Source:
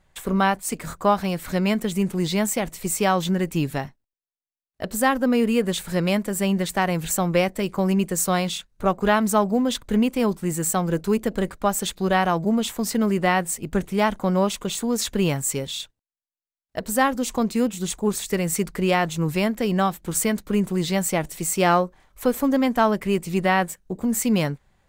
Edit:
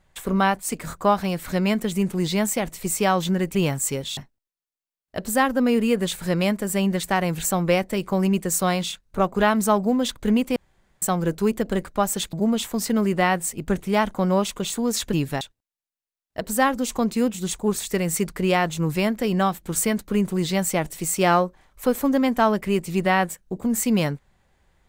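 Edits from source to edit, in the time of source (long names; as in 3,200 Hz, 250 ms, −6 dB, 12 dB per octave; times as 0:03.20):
0:03.55–0:03.83: swap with 0:15.18–0:15.80
0:10.22–0:10.68: fill with room tone
0:11.99–0:12.38: remove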